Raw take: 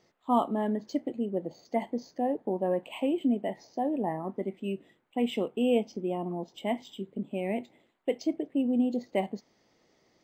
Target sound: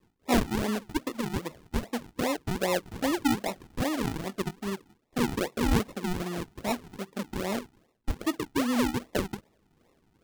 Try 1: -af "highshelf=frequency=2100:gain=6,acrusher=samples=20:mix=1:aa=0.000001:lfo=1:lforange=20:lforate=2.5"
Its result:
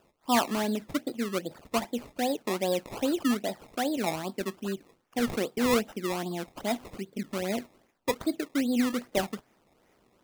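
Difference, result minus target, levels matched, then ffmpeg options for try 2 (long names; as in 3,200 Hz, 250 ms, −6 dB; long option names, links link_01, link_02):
sample-and-hold swept by an LFO: distortion −13 dB
-af "highshelf=frequency=2100:gain=6,acrusher=samples=55:mix=1:aa=0.000001:lfo=1:lforange=55:lforate=2.5"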